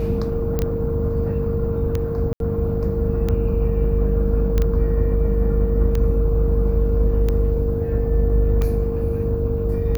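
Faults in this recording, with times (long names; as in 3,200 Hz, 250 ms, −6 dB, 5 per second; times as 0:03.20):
mains hum 50 Hz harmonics 7 −24 dBFS
scratch tick 45 rpm −11 dBFS
whistle 460 Hz −24 dBFS
0:00.59: click −9 dBFS
0:02.33–0:02.40: drop-out 72 ms
0:04.58: click −9 dBFS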